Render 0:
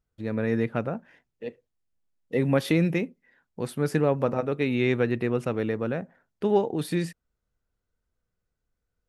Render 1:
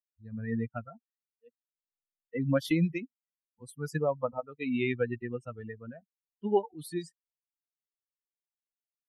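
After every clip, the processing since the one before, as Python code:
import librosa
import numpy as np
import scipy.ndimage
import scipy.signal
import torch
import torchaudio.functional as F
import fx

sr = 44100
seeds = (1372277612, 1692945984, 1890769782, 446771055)

y = fx.bin_expand(x, sr, power=3.0)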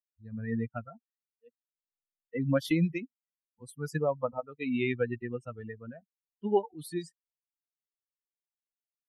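y = x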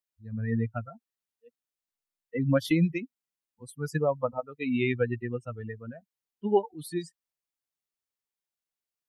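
y = fx.dynamic_eq(x, sr, hz=110.0, q=3.9, threshold_db=-50.0, ratio=4.0, max_db=5)
y = y * librosa.db_to_amplitude(2.5)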